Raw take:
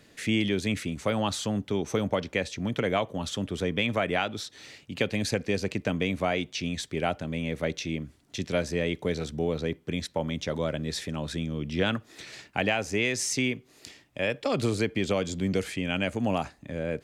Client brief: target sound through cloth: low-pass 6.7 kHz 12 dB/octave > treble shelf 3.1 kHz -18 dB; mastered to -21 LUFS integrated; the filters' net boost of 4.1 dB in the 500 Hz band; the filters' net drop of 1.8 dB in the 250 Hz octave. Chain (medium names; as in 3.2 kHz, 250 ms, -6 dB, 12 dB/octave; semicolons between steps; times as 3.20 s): low-pass 6.7 kHz 12 dB/octave; peaking EQ 250 Hz -4 dB; peaking EQ 500 Hz +6.5 dB; treble shelf 3.1 kHz -18 dB; trim +8 dB